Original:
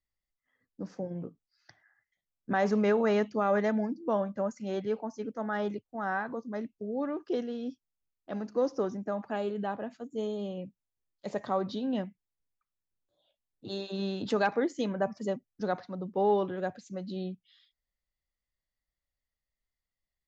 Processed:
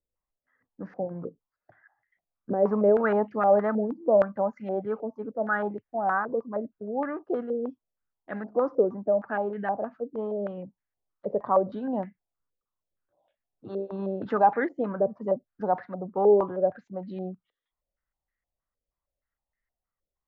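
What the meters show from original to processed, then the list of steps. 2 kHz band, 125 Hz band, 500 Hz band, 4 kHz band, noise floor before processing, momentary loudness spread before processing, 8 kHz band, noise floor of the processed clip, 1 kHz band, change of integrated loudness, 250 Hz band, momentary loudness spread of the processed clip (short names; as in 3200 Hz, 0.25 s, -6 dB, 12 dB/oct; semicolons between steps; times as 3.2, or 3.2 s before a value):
+3.0 dB, +0.5 dB, +6.0 dB, under -15 dB, under -85 dBFS, 13 LU, n/a, under -85 dBFS, +6.5 dB, +5.0 dB, +1.0 dB, 15 LU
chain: stepped low-pass 6.4 Hz 500–1800 Hz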